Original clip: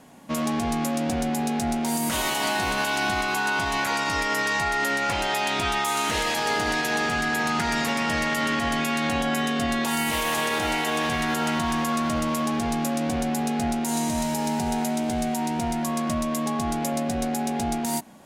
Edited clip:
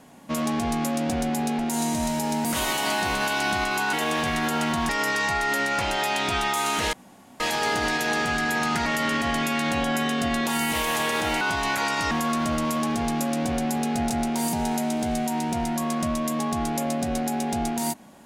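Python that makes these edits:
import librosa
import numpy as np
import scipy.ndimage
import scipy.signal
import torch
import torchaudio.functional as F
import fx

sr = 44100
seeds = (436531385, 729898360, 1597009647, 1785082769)

y = fx.edit(x, sr, fx.swap(start_s=1.59, length_s=0.43, other_s=13.74, other_length_s=0.86),
    fx.swap(start_s=3.5, length_s=0.7, other_s=10.79, other_length_s=0.96),
    fx.insert_room_tone(at_s=6.24, length_s=0.47),
    fx.cut(start_s=7.7, length_s=0.54), tone=tone)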